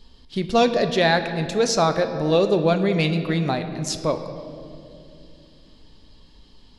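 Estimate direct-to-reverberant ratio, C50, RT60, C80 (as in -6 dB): 7.5 dB, 9.5 dB, 2.6 s, 10.5 dB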